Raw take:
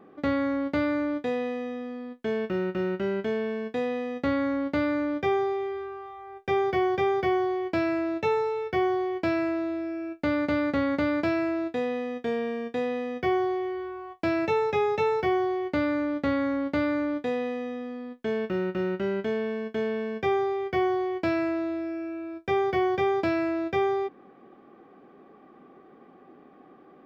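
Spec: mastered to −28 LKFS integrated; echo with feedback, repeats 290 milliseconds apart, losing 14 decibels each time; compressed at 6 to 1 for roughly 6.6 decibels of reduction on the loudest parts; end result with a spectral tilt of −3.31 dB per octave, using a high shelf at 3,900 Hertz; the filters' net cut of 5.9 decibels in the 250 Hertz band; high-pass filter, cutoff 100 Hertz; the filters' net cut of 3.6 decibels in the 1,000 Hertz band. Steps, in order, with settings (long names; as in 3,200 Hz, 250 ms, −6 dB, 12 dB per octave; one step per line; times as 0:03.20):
high-pass filter 100 Hz
parametric band 250 Hz −8 dB
parametric band 1,000 Hz −5 dB
high-shelf EQ 3,900 Hz +6.5 dB
downward compressor 6 to 1, threshold −31 dBFS
repeating echo 290 ms, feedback 20%, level −14 dB
level +7.5 dB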